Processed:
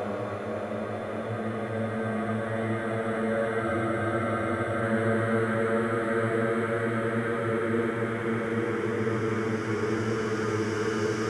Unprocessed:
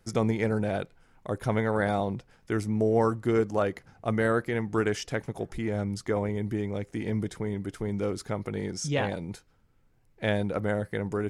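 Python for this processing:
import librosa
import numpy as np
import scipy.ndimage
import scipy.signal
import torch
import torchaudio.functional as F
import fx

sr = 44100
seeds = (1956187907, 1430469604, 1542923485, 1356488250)

y = fx.paulstretch(x, sr, seeds[0], factor=11.0, window_s=1.0, from_s=3.81)
y = fx.spec_freeze(y, sr, seeds[1], at_s=3.65, hold_s=1.17)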